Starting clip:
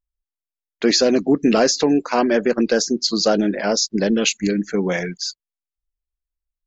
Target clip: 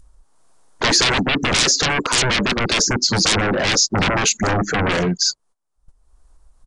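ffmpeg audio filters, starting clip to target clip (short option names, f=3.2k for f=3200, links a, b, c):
-af "highshelf=f=1.6k:t=q:w=1.5:g=-14,aeval=exprs='0.631*sin(PI/2*8.91*val(0)/0.631)':c=same,adynamicequalizer=threshold=0.0708:dfrequency=830:dqfactor=1:tfrequency=830:tqfactor=1:attack=5:release=100:ratio=0.375:range=3.5:mode=cutabove:tftype=bell,alimiter=limit=-12.5dB:level=0:latency=1:release=142,agate=range=-19dB:threshold=-51dB:ratio=16:detection=peak,acompressor=mode=upward:threshold=-22dB:ratio=2.5,crystalizer=i=2:c=0,aresample=22050,aresample=44100,volume=-1.5dB"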